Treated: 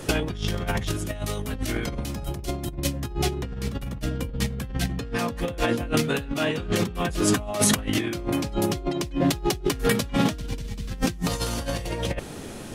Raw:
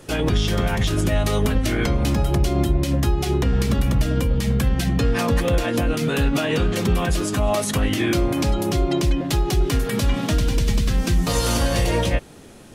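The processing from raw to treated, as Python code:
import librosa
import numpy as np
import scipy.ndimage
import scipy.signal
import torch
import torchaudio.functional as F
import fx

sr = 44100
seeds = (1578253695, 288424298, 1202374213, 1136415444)

y = fx.high_shelf(x, sr, hz=5400.0, db=8.0, at=(0.9, 3.0))
y = fx.over_compress(y, sr, threshold_db=-25.0, ratio=-0.5)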